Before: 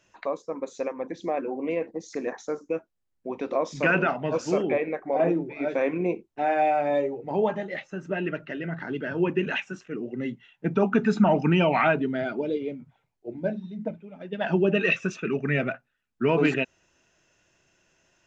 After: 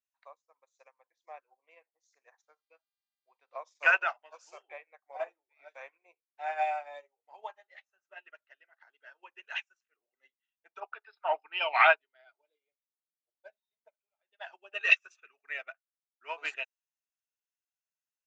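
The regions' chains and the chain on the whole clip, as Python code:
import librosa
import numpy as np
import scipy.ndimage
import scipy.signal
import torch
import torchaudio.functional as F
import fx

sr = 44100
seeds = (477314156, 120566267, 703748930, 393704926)

y = fx.lowpass(x, sr, hz=4000.0, slope=12, at=(2.41, 3.56), fade=0.02)
y = fx.dmg_buzz(y, sr, base_hz=400.0, harmonics=12, level_db=-65.0, tilt_db=0, odd_only=False, at=(2.41, 3.56), fade=0.02)
y = fx.chain(y, sr, fx.brickwall_bandpass(low_hz=260.0, high_hz=5400.0),
    fx.band_widen(depth_pct=70), at=(10.8, 13.44))
y = scipy.signal.sosfilt(scipy.signal.butter(4, 740.0, 'highpass', fs=sr, output='sos'), y)
y = fx.high_shelf(y, sr, hz=6100.0, db=10.0)
y = fx.upward_expand(y, sr, threshold_db=-46.0, expansion=2.5)
y = y * 10.0 ** (3.5 / 20.0)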